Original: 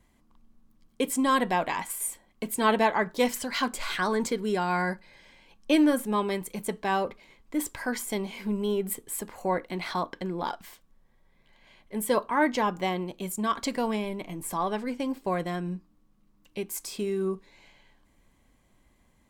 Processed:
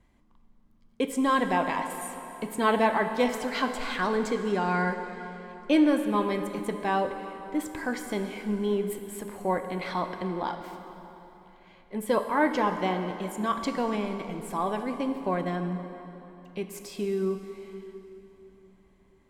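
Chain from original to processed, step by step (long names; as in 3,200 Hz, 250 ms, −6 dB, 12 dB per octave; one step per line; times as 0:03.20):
low-pass filter 3,100 Hz 6 dB per octave
dense smooth reverb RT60 3.7 s, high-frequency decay 0.75×, DRR 6.5 dB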